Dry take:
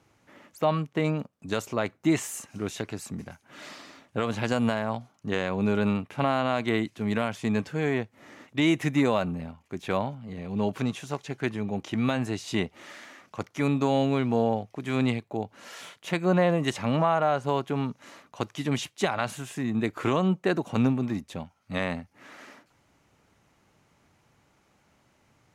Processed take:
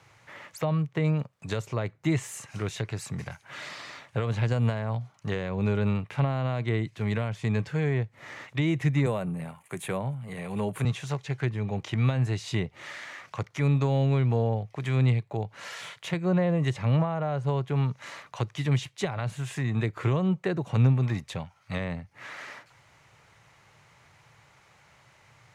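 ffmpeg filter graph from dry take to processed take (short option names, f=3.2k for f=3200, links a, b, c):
-filter_complex "[0:a]asettb=1/sr,asplit=3[a][b][c];[a]atrim=end=9.064[d];[b]atrim=start=9.06:end=10.85,asetpts=PTS-STARTPTS,afade=t=in:d=0.004:c=qsin,afade=t=out:st=1.786:d=0.004:c=qsin,highpass=f=120:w=0.5412,highpass=f=120:w=1.3066,highshelf=f=7.2k:t=q:w=3:g=11.5[e];[c]atrim=start=10.846[f];[d][e]acrossfade=d=0.004:c1=hsin:c2=qsin[g];[g][f]acrossfade=d=0.004:c1=qsin:c2=hsin,equalizer=f=125:t=o:w=1:g=11,equalizer=f=250:t=o:w=1:g=-10,equalizer=f=500:t=o:w=1:g=4,equalizer=f=1k:t=o:w=1:g=6,equalizer=f=2k:t=o:w=1:g=9,equalizer=f=4k:t=o:w=1:g=6,equalizer=f=8k:t=o:w=1:g=5,acrossover=split=420[h][i];[i]acompressor=threshold=-38dB:ratio=4[j];[h][j]amix=inputs=2:normalize=0"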